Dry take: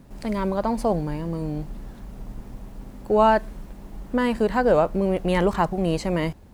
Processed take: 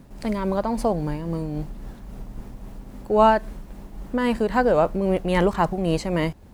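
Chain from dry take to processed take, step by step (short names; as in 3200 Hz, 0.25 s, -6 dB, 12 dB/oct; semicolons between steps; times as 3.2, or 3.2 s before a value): tremolo 3.7 Hz, depth 35%; gain +2 dB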